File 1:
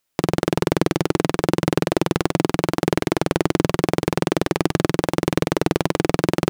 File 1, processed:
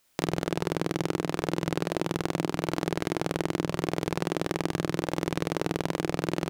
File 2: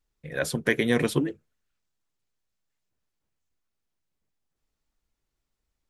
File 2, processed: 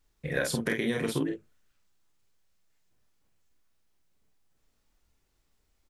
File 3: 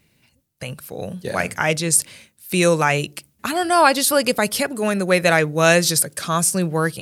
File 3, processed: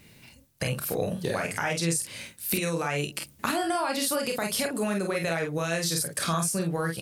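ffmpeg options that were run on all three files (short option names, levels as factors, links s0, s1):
-filter_complex "[0:a]alimiter=limit=0.299:level=0:latency=1:release=52,acompressor=threshold=0.0224:ratio=8,asplit=2[s0][s1];[s1]aecho=0:1:30|48:0.447|0.562[s2];[s0][s2]amix=inputs=2:normalize=0,volume=2"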